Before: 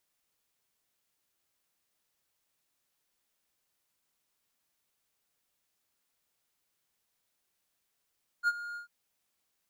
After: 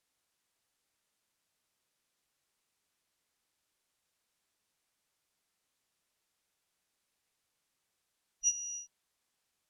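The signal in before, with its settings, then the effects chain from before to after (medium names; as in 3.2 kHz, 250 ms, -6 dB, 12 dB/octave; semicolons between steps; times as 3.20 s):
ADSR triangle 1.42 kHz, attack 49 ms, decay 39 ms, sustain -15.5 dB, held 0.33 s, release 114 ms -20 dBFS
four frequency bands reordered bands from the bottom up 2341; low-pass 11 kHz 12 dB/octave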